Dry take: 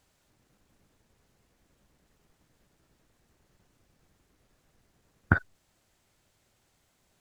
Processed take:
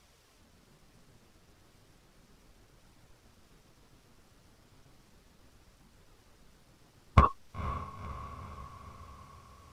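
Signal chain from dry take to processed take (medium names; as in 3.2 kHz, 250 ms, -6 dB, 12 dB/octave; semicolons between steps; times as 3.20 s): in parallel at +3 dB: peak limiter -12.5 dBFS, peak gain reduction 8 dB; on the sum: overload inside the chain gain 9.5 dB; flange 0.46 Hz, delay 0.6 ms, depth 6.9 ms, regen -45%; speed mistake 45 rpm record played at 33 rpm; echo that smears into a reverb 499 ms, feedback 59%, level -12.5 dB; trim +3.5 dB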